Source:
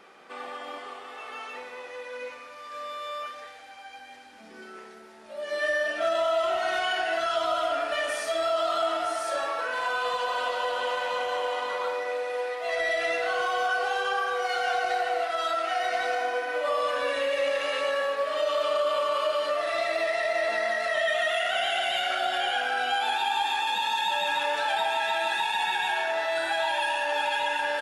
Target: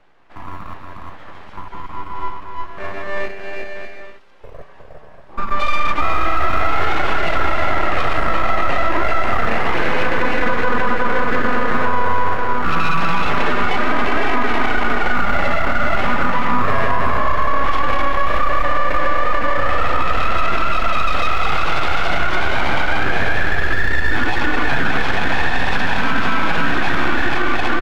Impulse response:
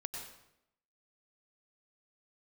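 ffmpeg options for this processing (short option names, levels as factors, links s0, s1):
-filter_complex "[0:a]lowshelf=f=400:g=10.5,afwtdn=0.0447,aecho=1:1:360|594|746.1|845|909.2:0.631|0.398|0.251|0.158|0.1,aeval=exprs='abs(val(0))':c=same,lowpass=f=1200:p=1,equalizer=f=95:w=0.36:g=-7.5,acrossover=split=150[s0][s1];[s0]acrusher=samples=24:mix=1:aa=0.000001:lfo=1:lforange=14.4:lforate=0.34[s2];[s2][s1]amix=inputs=2:normalize=0,alimiter=level_in=11.9:limit=0.891:release=50:level=0:latency=1,volume=0.596"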